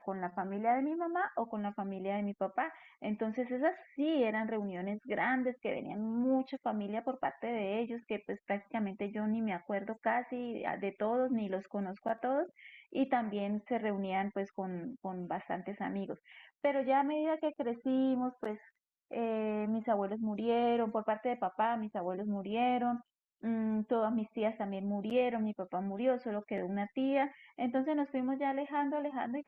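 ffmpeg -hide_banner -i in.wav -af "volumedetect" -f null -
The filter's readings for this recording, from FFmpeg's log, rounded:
mean_volume: -34.8 dB
max_volume: -19.7 dB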